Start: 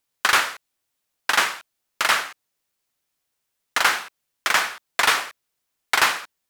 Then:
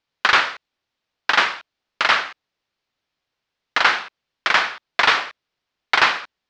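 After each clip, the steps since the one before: low-pass 4.8 kHz 24 dB/octave; trim +3 dB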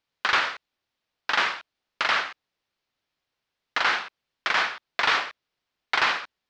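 peak limiter -8.5 dBFS, peak gain reduction 7 dB; trim -2.5 dB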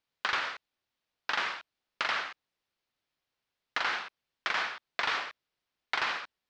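compression 4:1, threshold -23 dBFS, peak gain reduction 5.5 dB; trim -4 dB

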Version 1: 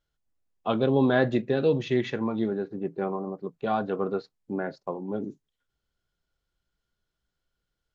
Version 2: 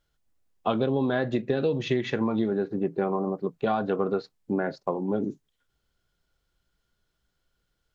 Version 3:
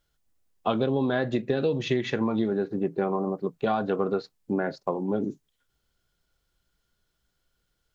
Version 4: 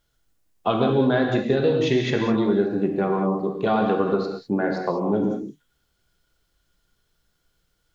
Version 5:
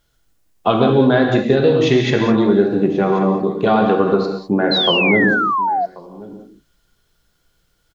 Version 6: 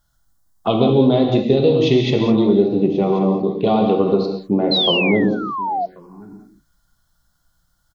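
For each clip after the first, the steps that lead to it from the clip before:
compression 12:1, threshold -27 dBFS, peak gain reduction 11.5 dB; trim +6 dB
treble shelf 5.1 kHz +4.5 dB
gated-style reverb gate 230 ms flat, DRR 1.5 dB; trim +3 dB
delay 1085 ms -19.5 dB; painted sound fall, 4.71–5.86 s, 670–4200 Hz -24 dBFS; trim +6.5 dB
touch-sensitive phaser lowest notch 420 Hz, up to 1.6 kHz, full sweep at -16 dBFS

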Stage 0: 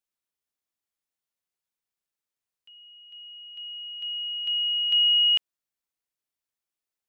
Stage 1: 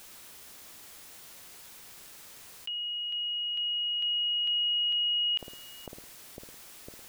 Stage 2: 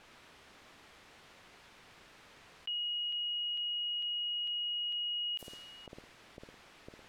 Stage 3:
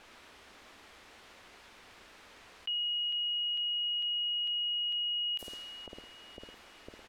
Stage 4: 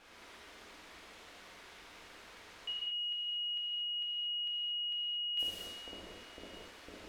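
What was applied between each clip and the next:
peak limiter -25 dBFS, peak gain reduction 8 dB; bucket-brigade echo 503 ms, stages 2048, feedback 63%, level -11.5 dB; level flattener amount 70%
level-controlled noise filter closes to 2.2 kHz, open at -26.5 dBFS; treble shelf 11 kHz +11.5 dB; peak limiter -32 dBFS, peak gain reduction 9.5 dB; trim -1 dB
peaking EQ 140 Hz -14 dB 0.42 oct; feedback delay 1166 ms, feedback 19%, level -23 dB; trim +3 dB
gated-style reverb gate 260 ms flat, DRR -6 dB; trim -5.5 dB

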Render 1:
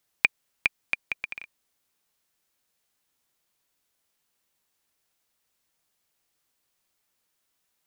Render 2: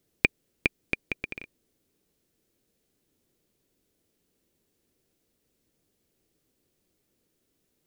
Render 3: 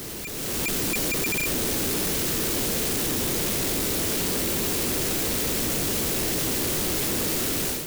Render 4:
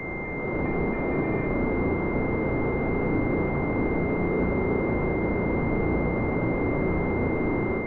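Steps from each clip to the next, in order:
resonant low shelf 600 Hz +14 dB, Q 1.5; trim -1 dB
one-bit comparator; level rider gain up to 10 dB; trim +5 dB
coarse spectral quantiser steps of 15 dB; flutter echo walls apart 5.9 m, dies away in 0.56 s; class-D stage that switches slowly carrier 2.1 kHz; trim +2 dB

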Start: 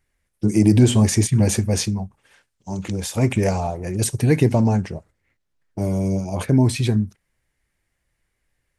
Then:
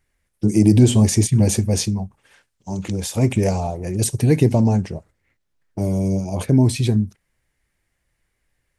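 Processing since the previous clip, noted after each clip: dynamic bell 1.5 kHz, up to -7 dB, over -41 dBFS, Q 0.93; trim +1.5 dB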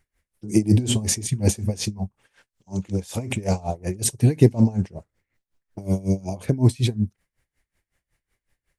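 logarithmic tremolo 5.4 Hz, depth 22 dB; trim +2.5 dB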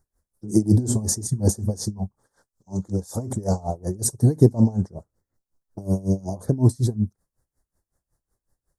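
Butterworth band-stop 2.6 kHz, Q 0.63

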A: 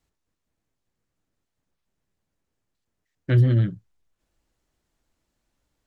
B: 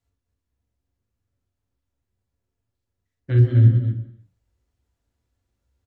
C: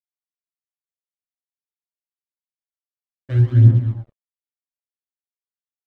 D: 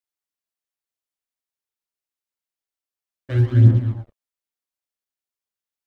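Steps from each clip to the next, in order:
loudspeakers at several distances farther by 15 m -4 dB, 86 m -7 dB; on a send at -3.5 dB: reverberation, pre-delay 3 ms; on the sum: trim -8 dB
crossover distortion -39.5 dBFS; phaser 0.54 Hz, delay 3.9 ms, feedback 44%; trim -1.5 dB
peaking EQ 140 Hz -8.5 dB 0.71 oct; trim +3.5 dB

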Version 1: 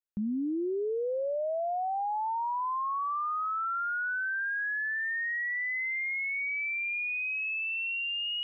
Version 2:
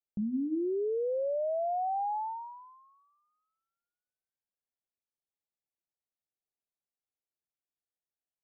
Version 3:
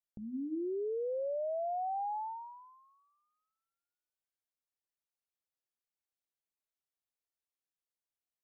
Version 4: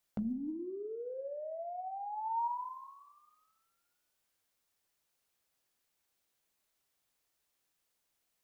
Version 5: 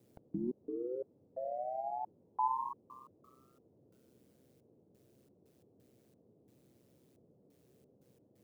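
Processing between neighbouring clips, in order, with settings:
steep low-pass 870 Hz 96 dB/octave; hum notches 60/120/180/240/300 Hz
peaking EQ 190 Hz -15 dB 0.39 oct; trim -4 dB
compressor with a negative ratio -45 dBFS, ratio -1; Schroeder reverb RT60 0.88 s, combs from 32 ms, DRR 10.5 dB; wavefolder -33 dBFS; trim +5.5 dB
trance gate "x.x.xx..xxxx..x" 88 bpm -60 dB; ring modulator 64 Hz; band noise 88–500 Hz -73 dBFS; trim +5.5 dB

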